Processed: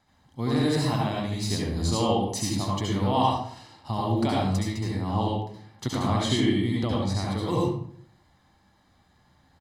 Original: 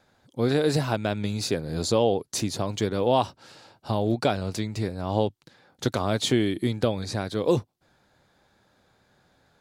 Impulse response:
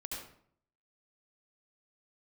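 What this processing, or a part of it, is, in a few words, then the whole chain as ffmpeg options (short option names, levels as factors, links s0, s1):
microphone above a desk: -filter_complex "[0:a]asettb=1/sr,asplit=3[s0][s1][s2];[s0]atrim=end=6.014[s3];[s1]atrim=start=6.01:end=7.07,asetpts=PTS-STARTPTS,afade=t=in:d=0.004:c=qsin,afade=t=out:st=1.056:d=0.004:c=qsin,highshelf=f=11000:g=-11[s4];[s2]atrim=start=7.066[s5];[s3][s4]acrossfade=d=0.004:c1=hsin:c2=qsin[s6];[s6][s5]acrossfade=d=0.004:c1=qsin:c2=hsin,aecho=1:1:1:0.6[s7];[1:a]atrim=start_sample=2205[s8];[s7][s8]afir=irnorm=-1:irlink=0"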